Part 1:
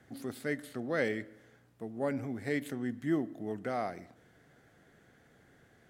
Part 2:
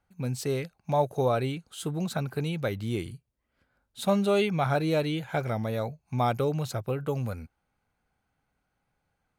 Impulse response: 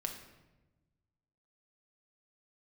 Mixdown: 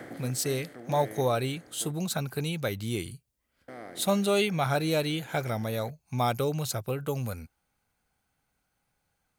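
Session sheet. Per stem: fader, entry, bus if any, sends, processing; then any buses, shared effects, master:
-3.5 dB, 0.00 s, muted 1.92–3.68 s, no send, spectral levelling over time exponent 0.4; auto duck -11 dB, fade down 0.30 s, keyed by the second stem
-1.5 dB, 0.00 s, no send, treble shelf 3.8 kHz +12 dB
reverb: none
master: none

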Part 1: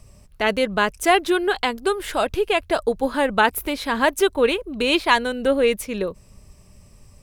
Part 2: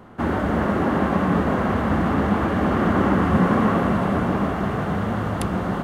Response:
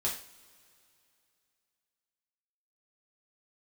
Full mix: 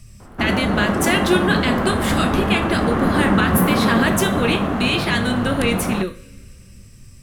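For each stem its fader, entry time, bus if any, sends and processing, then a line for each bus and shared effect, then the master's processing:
+1.5 dB, 0.00 s, send -5.5 dB, high-order bell 650 Hz -12.5 dB; peak limiter -15 dBFS, peak gain reduction 10 dB
+1.0 dB, 0.20 s, no send, none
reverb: on, pre-delay 3 ms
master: none

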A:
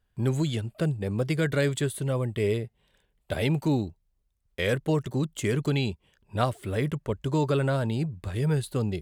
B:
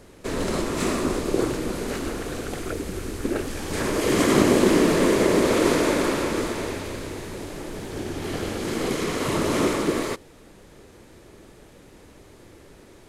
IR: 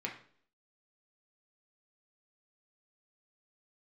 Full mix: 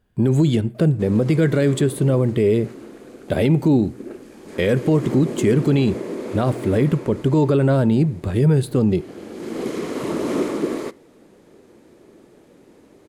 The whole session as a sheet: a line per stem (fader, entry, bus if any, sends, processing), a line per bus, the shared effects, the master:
+3.0 dB, 0.00 s, send -14.5 dB, none
-8.0 dB, 0.75 s, send -18.5 dB, bass shelf 140 Hz -10 dB; auto duck -12 dB, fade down 1.50 s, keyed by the first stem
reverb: on, RT60 0.55 s, pre-delay 3 ms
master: peaking EQ 260 Hz +11 dB 2.9 oct; peak limiter -8.5 dBFS, peak gain reduction 8 dB

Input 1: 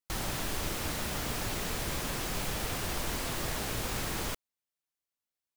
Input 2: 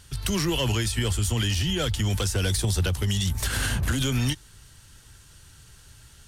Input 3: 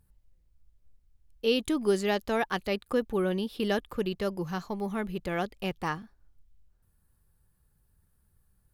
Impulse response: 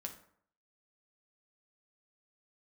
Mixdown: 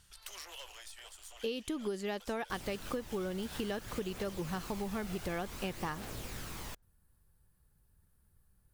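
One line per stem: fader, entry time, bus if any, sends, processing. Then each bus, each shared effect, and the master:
-10.5 dB, 2.40 s, no send, phaser 0.55 Hz, delay 1.5 ms, feedback 33%
-12.0 dB, 0.00 s, no send, one-sided wavefolder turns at -22.5 dBFS; high-pass 600 Hz 24 dB/octave; auto duck -8 dB, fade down 0.80 s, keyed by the third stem
-1.0 dB, 0.00 s, no send, none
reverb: none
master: compression 12:1, threshold -33 dBFS, peak gain reduction 12.5 dB

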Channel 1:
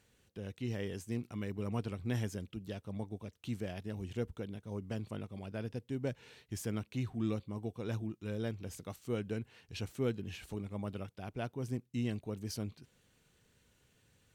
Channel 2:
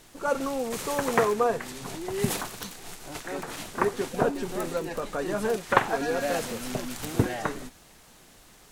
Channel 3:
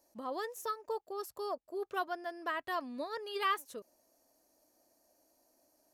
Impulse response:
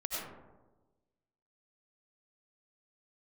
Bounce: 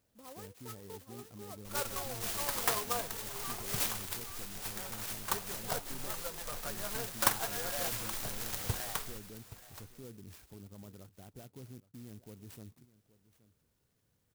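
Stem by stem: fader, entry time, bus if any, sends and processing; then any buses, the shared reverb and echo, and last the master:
-7.0 dB, 0.00 s, no send, echo send -18.5 dB, peak limiter -34.5 dBFS, peak gain reduction 10.5 dB
+2.0 dB, 1.50 s, no send, echo send -16 dB, gate with hold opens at -40 dBFS; amplifier tone stack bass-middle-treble 10-0-10
-11.5 dB, 0.00 s, no send, echo send -9 dB, none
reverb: none
echo: delay 824 ms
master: sampling jitter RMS 0.13 ms

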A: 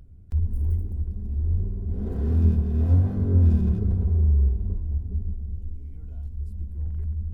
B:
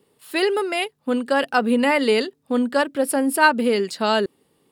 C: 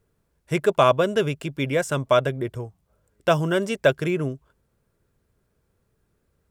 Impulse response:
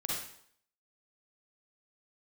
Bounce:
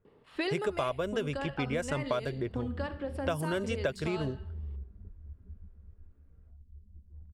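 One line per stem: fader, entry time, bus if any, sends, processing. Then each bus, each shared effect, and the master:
-19.0 dB, 0.35 s, no send, reverb removal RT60 0.6 s
+3.0 dB, 0.05 s, send -24 dB, compression 5:1, threshold -26 dBFS, peak gain reduction 15 dB; band-stop 1.5 kHz, Q 27; auto duck -12 dB, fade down 1.05 s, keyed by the third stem
-4.5 dB, 0.00 s, no send, none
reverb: on, RT60 0.65 s, pre-delay 38 ms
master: level-controlled noise filter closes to 1.9 kHz, open at -20.5 dBFS; compression 6:1, threshold -28 dBFS, peak gain reduction 11.5 dB

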